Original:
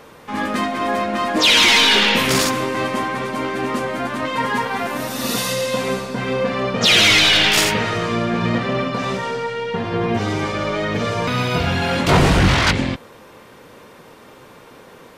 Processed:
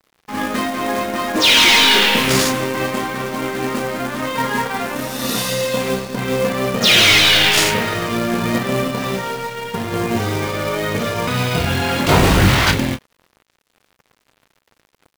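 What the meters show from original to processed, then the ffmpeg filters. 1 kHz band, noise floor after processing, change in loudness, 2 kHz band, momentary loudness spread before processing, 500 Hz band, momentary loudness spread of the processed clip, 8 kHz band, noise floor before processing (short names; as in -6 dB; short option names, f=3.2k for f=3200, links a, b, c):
+0.5 dB, -65 dBFS, +1.5 dB, +1.0 dB, 13 LU, +1.0 dB, 14 LU, +2.5 dB, -44 dBFS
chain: -filter_complex "[0:a]asplit=2[a][b];[b]adelay=31,volume=-7.5dB[c];[a][c]amix=inputs=2:normalize=0,aeval=exprs='sgn(val(0))*max(abs(val(0))-0.015,0)':c=same,acrusher=bits=3:mode=log:mix=0:aa=0.000001,volume=1dB"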